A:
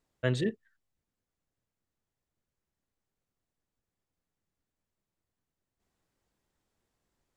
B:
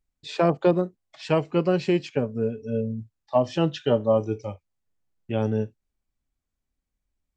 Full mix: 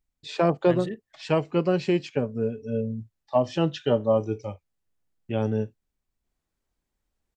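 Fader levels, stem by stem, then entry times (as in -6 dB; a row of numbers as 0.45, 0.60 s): -4.5, -1.0 dB; 0.45, 0.00 s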